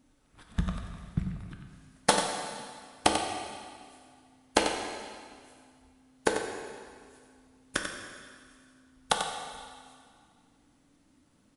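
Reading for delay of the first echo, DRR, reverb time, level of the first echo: 92 ms, 1.5 dB, 2.1 s, −7.5 dB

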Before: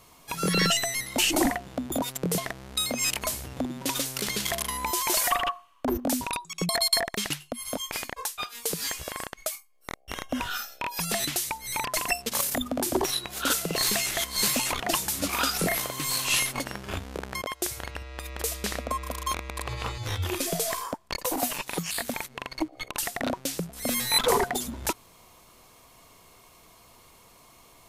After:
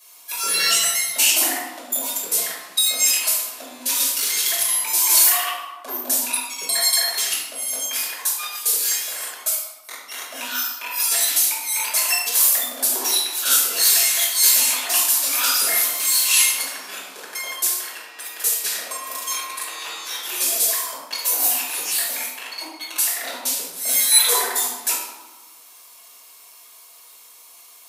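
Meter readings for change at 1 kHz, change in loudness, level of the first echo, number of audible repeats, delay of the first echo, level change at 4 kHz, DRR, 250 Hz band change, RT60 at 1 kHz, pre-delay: 0.0 dB, +9.5 dB, no echo audible, no echo audible, no echo audible, +7.0 dB, −8.5 dB, −11.0 dB, 1.3 s, 5 ms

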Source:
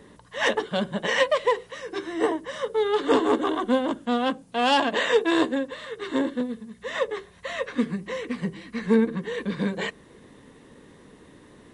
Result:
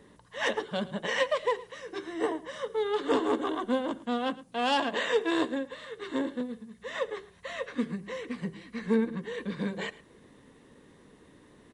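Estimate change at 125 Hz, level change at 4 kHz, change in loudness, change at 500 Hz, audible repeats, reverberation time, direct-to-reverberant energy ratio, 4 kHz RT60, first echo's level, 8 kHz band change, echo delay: −6.0 dB, −6.0 dB, −6.0 dB, −6.0 dB, 1, no reverb audible, no reverb audible, no reverb audible, −19.0 dB, −6.0 dB, 110 ms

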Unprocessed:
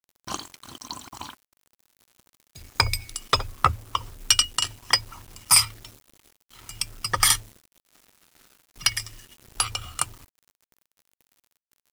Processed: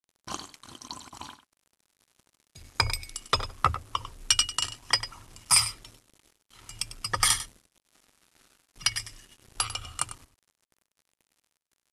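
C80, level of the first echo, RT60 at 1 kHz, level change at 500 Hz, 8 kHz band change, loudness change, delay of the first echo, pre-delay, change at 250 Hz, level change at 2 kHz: no reverb audible, −13.0 dB, no reverb audible, −4.0 dB, −4.0 dB, −4.0 dB, 98 ms, no reverb audible, −3.5 dB, −4.0 dB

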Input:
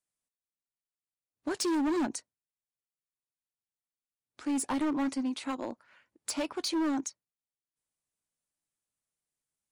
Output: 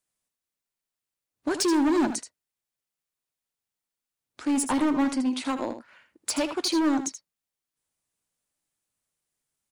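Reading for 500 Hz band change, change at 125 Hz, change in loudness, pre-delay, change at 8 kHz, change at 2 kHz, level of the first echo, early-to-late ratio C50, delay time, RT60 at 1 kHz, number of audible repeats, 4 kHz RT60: +6.5 dB, can't be measured, +6.5 dB, no reverb audible, +6.5 dB, +6.5 dB, −10.0 dB, no reverb audible, 79 ms, no reverb audible, 1, no reverb audible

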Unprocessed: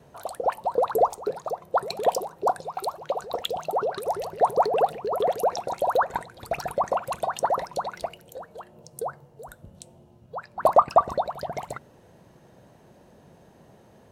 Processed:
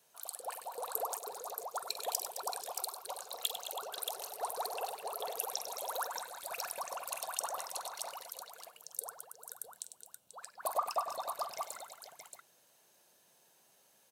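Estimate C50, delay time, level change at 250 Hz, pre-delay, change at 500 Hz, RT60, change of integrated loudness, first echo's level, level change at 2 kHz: no reverb audible, 47 ms, −24.5 dB, no reverb audible, −18.5 dB, no reverb audible, −13.5 dB, −11.0 dB, −9.0 dB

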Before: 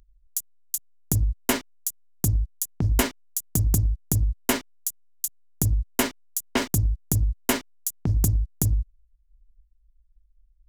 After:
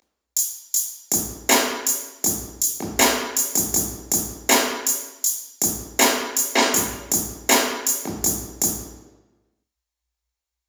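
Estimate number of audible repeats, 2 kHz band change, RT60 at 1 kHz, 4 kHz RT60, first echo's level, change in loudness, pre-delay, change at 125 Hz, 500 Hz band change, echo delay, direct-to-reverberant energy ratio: no echo audible, +9.5 dB, 1.1 s, 0.90 s, no echo audible, +6.0 dB, 20 ms, −13.5 dB, +8.0 dB, no echo audible, −3.0 dB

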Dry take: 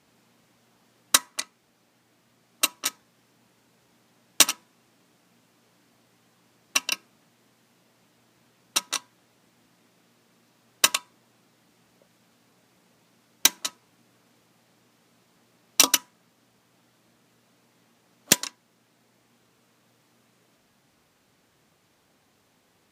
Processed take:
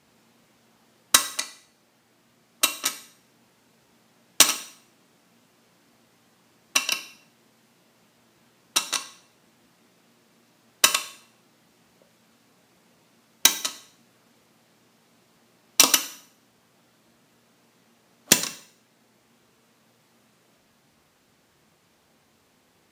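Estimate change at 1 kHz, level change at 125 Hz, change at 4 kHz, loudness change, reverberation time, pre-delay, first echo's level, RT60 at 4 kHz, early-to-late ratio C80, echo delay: +2.5 dB, +1.5 dB, +2.0 dB, +2.0 dB, 0.60 s, 4 ms, no echo audible, 0.55 s, 16.5 dB, no echo audible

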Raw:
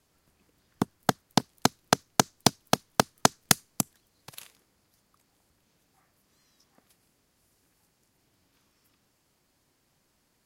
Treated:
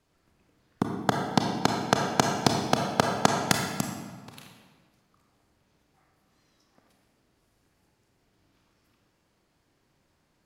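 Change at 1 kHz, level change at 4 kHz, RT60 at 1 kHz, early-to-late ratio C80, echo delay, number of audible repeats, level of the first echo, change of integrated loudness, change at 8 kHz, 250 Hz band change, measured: +2.0 dB, −2.0 dB, 1.5 s, 4.5 dB, no echo audible, no echo audible, no echo audible, 0.0 dB, −5.5 dB, +2.0 dB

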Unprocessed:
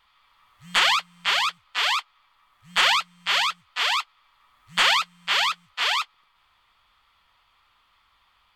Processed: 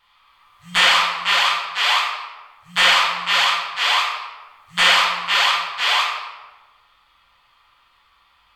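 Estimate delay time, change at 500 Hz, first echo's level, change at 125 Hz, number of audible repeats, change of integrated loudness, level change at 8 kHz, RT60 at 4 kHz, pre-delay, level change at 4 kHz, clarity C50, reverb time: no echo audible, +6.5 dB, no echo audible, +7.0 dB, no echo audible, +5.5 dB, +4.5 dB, 0.80 s, 5 ms, +5.5 dB, 1.5 dB, 1.3 s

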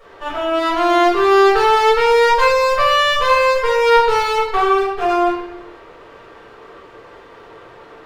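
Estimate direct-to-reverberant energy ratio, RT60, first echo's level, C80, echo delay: −8.5 dB, 0.90 s, no echo audible, 5.0 dB, no echo audible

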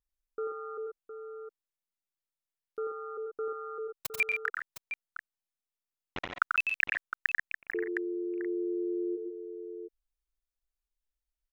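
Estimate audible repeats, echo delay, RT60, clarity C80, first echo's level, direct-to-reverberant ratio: 3, 90 ms, no reverb audible, no reverb audible, −5.0 dB, no reverb audible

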